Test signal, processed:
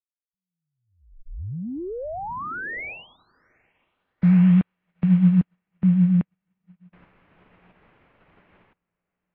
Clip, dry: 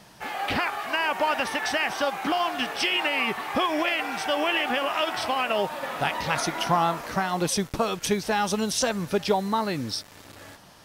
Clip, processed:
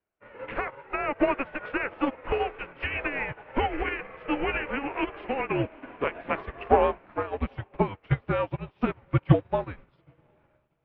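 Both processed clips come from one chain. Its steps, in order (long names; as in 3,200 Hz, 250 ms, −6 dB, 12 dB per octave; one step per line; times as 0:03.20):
parametric band 100 Hz +9 dB 1.7 octaves
pitch vibrato 7.9 Hz 21 cents
feedback delay with all-pass diffusion 834 ms, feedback 54%, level −14 dB
single-sideband voice off tune −280 Hz 310–2,900 Hz
expander for the loud parts 2.5 to 1, over −45 dBFS
level +6 dB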